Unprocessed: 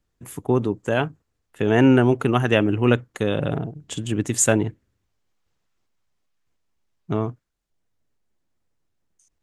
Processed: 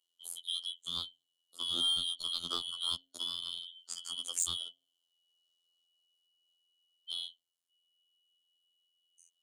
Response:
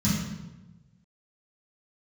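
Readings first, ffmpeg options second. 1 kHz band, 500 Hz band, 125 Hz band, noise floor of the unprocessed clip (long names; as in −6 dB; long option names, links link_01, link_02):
−22.5 dB, −37.0 dB, −37.0 dB, −75 dBFS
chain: -filter_complex "[0:a]afftfilt=real='real(if(lt(b,272),68*(eq(floor(b/68),0)*1+eq(floor(b/68),1)*3+eq(floor(b/68),2)*0+eq(floor(b/68),3)*2)+mod(b,68),b),0)':imag='imag(if(lt(b,272),68*(eq(floor(b/68),0)*1+eq(floor(b/68),1)*3+eq(floor(b/68),2)*0+eq(floor(b/68),3)*2)+mod(b,68),b),0)':win_size=2048:overlap=0.75,acrossover=split=130|2500[link_01][link_02][link_03];[link_02]adynamicsmooth=sensitivity=2:basefreq=1800[link_04];[link_01][link_04][link_03]amix=inputs=3:normalize=0,afftfilt=real='hypot(re,im)*cos(PI*b)':imag='0':win_size=2048:overlap=0.75,asplit=2[link_05][link_06];[link_06]aeval=exprs='sgn(val(0))*max(abs(val(0))-0.0376,0)':channel_layout=same,volume=-11dB[link_07];[link_05][link_07]amix=inputs=2:normalize=0,bass=frequency=250:gain=-14,treble=frequency=4000:gain=7,asoftclip=type=hard:threshold=-0.5dB,acrossover=split=240[link_08][link_09];[link_09]acompressor=threshold=-41dB:ratio=1.5[link_10];[link_08][link_10]amix=inputs=2:normalize=0,equalizer=frequency=9500:width=6.2:gain=9,bandreject=frequency=134.7:width_type=h:width=4,bandreject=frequency=269.4:width_type=h:width=4,bandreject=frequency=404.1:width_type=h:width=4,bandreject=frequency=538.8:width_type=h:width=4,bandreject=frequency=673.5:width_type=h:width=4,bandreject=frequency=808.2:width_type=h:width=4,volume=-6.5dB"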